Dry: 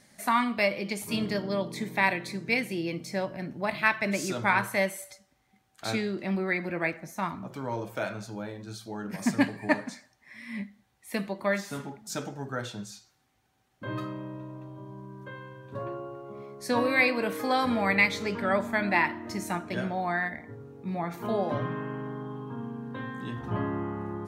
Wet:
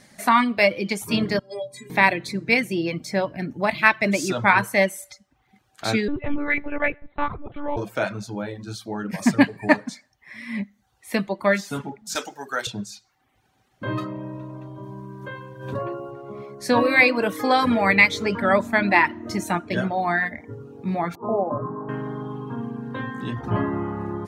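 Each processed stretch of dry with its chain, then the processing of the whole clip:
1.39–1.90 s: peaking EQ 8.7 kHz +13 dB 0.63 oct + inharmonic resonator 120 Hz, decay 0.48 s, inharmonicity 0.03
6.08–7.77 s: distance through air 62 m + monotone LPC vocoder at 8 kHz 290 Hz
12.15–12.67 s: high-pass 260 Hz + tilt EQ +3.5 dB/octave
14.83–16.11 s: treble shelf 8.7 kHz +6.5 dB + swell ahead of each attack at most 67 dB/s
21.15–21.89 s: steep low-pass 1.2 kHz 48 dB/octave + bass shelf 270 Hz -8 dB
whole clip: reverb removal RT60 0.6 s; treble shelf 8.6 kHz -5.5 dB; trim +8 dB

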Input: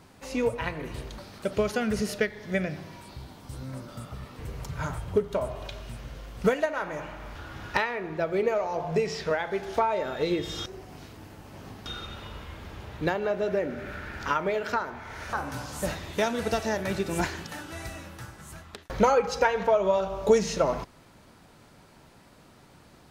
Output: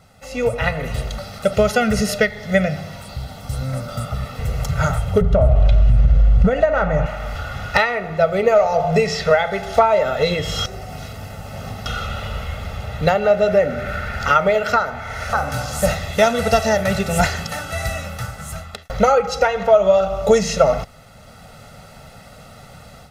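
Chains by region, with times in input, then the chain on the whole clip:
5.21–7.06 s: RIAA curve playback + compression 4:1, threshold -23 dBFS
whole clip: comb 1.5 ms, depth 93%; level rider gain up to 10.5 dB

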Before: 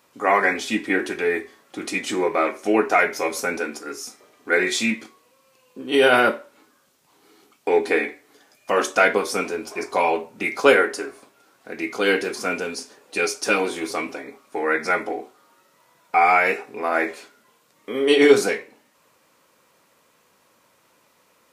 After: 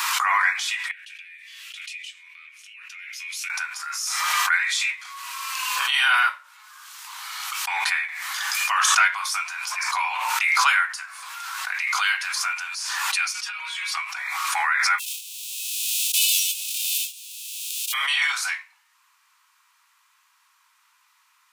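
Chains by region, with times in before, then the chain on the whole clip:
0.91–3.50 s: compression 2:1, threshold -32 dBFS + ladder high-pass 2.4 kHz, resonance 60%
13.33–13.97 s: peaking EQ 2.6 kHz +11 dB 1.6 oct + compression 12:1, threshold -18 dBFS + inharmonic resonator 82 Hz, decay 0.23 s, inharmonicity 0.008
14.98–17.92 s: formants flattened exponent 0.1 + rippled Chebyshev high-pass 2.5 kHz, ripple 3 dB
whole clip: steep high-pass 960 Hz 48 dB/octave; treble shelf 10 kHz -4 dB; swell ahead of each attack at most 21 dB/s

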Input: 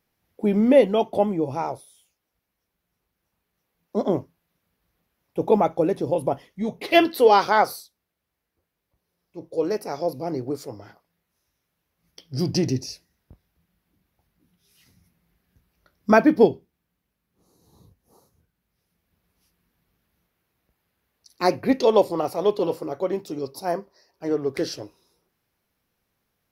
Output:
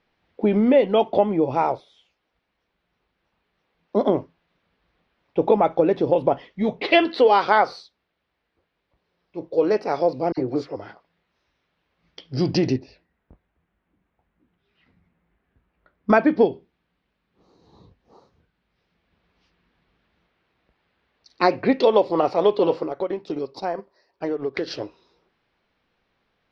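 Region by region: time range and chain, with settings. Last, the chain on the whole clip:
10.32–10.76 s: comb of notches 210 Hz + phase dispersion lows, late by 54 ms, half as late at 1.8 kHz
12.76–16.10 s: low-pass 2.1 kHz + flange 1.1 Hz, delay 2.5 ms, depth 2.2 ms, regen -72%
22.83–24.71 s: compression 4:1, threshold -30 dBFS + transient shaper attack +3 dB, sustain -8 dB
whole clip: compression 4:1, threshold -20 dBFS; low-pass 4.1 kHz 24 dB/octave; peaking EQ 99 Hz -7 dB 2.3 oct; trim +7.5 dB

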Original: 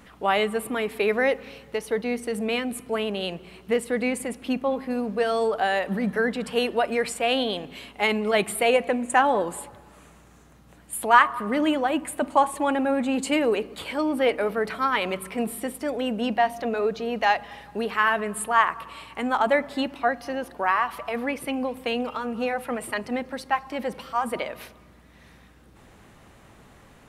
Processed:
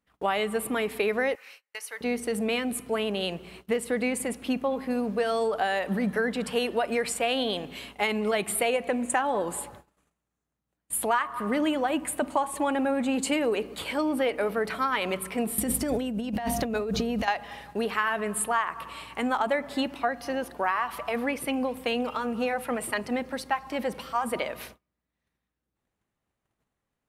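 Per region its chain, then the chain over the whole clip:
1.35–2.01 s: high-pass 1.5 kHz + peaking EQ 3.5 kHz -8.5 dB 0.43 oct
15.58–17.28 s: tone controls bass +14 dB, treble +6 dB + compressor with a negative ratio -28 dBFS
whole clip: treble shelf 6.5 kHz +4 dB; gate -46 dBFS, range -32 dB; compression 6:1, threshold -22 dBFS

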